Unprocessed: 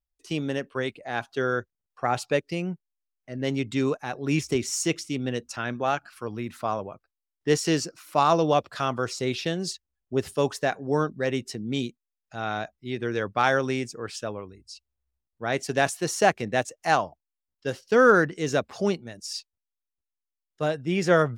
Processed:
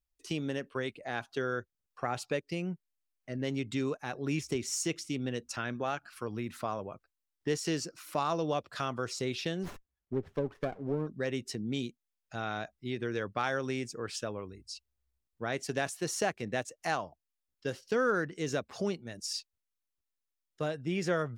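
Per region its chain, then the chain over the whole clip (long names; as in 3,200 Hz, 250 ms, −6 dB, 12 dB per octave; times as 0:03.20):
0:09.63–0:11.07: treble cut that deepens with the level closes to 570 Hz, closed at −19 dBFS + high-shelf EQ 9,700 Hz −9.5 dB + windowed peak hold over 9 samples
whole clip: parametric band 790 Hz −2.5 dB; downward compressor 2 to 1, threshold −35 dBFS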